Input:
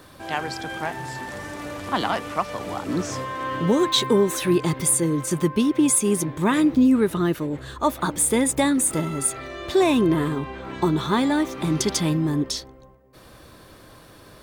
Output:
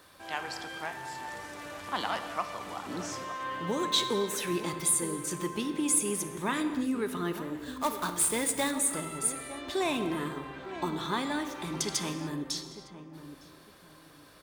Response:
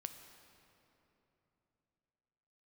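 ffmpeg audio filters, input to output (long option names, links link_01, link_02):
-filter_complex "[0:a]lowshelf=frequency=480:gain=-10.5,asettb=1/sr,asplit=3[link_01][link_02][link_03];[link_01]atrim=end=7.574[link_04];[link_02]atrim=start=7.57:end=8.71,asetpts=PTS-STARTPTS,afade=type=in:duration=0.004:curve=qsin,afade=type=out:start_time=1.136:duration=0.004:curve=qsin,acrusher=bits=2:mode=log:mix=0:aa=0.000001[link_05];[link_03]atrim=start=8.706[link_06];[link_04][link_05]acrossfade=duration=0.004:curve1=hsin:curve2=qsin[link_07];[link_07][link_06]acrossfade=duration=0.004:curve1=qsin:curve2=hsin,asplit=2[link_08][link_09];[link_09]adelay=908,lowpass=frequency=940:poles=1,volume=-11dB,asplit=2[link_10][link_11];[link_11]adelay=908,lowpass=frequency=940:poles=1,volume=0.28,asplit=2[link_12][link_13];[link_13]adelay=908,lowpass=frequency=940:poles=1,volume=0.28[link_14];[link_08][link_10][link_12][link_14]amix=inputs=4:normalize=0[link_15];[1:a]atrim=start_sample=2205,afade=type=out:start_time=0.36:duration=0.01,atrim=end_sample=16317[link_16];[link_15][link_16]afir=irnorm=-1:irlink=0,volume=-2dB"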